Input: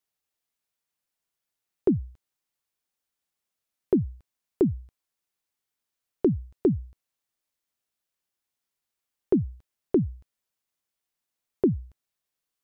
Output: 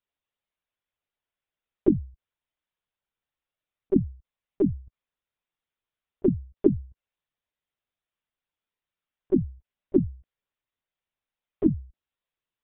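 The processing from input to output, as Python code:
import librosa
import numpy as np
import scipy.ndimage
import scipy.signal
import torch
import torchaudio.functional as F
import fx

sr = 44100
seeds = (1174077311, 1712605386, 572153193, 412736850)

y = fx.lpc_vocoder(x, sr, seeds[0], excitation='pitch_kept', order=16)
y = y * librosa.db_to_amplitude(-1.0)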